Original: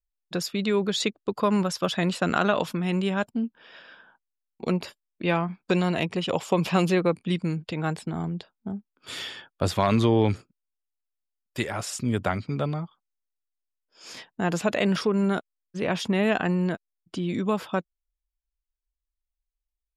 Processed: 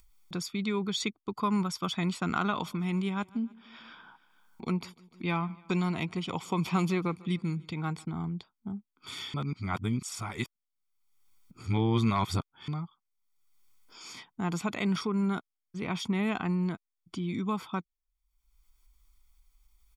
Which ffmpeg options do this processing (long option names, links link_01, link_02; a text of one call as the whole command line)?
ffmpeg -i in.wav -filter_complex "[0:a]asettb=1/sr,asplit=3[link_01][link_02][link_03];[link_01]atrim=end=2.514[link_04];[link_02]atrim=start=2.51:end=8.05,asetpts=PTS-STARTPTS,afade=type=in:duration=0.004:curve=qsin,afade=type=out:start_time=5.536:duration=0.004:curve=qsin,aecho=1:1:149|298|447:0.0708|0.0368|0.0191,atrim=end_sample=244314[link_05];[link_03]atrim=start=8.046[link_06];[link_04][link_05]acrossfade=duration=0.004:curve1=hsin:curve2=qsin[link_07];[link_07][link_06]acrossfade=duration=0.004:curve1=qsin:curve2=hsin,asplit=3[link_08][link_09][link_10];[link_08]atrim=end=9.342[link_11];[link_09]atrim=start=9.338:end=12.682,asetpts=PTS-STARTPTS,areverse[link_12];[link_10]atrim=start=12.678[link_13];[link_11][link_12]acrossfade=duration=0.004:curve1=hsin:curve2=hsin[link_14];[link_14][link_13]acrossfade=duration=0.004:curve1=hsin:curve2=hsin,aecho=1:1:0.9:0.71,acompressor=mode=upward:threshold=-33dB:ratio=2.5,volume=-7.5dB" out.wav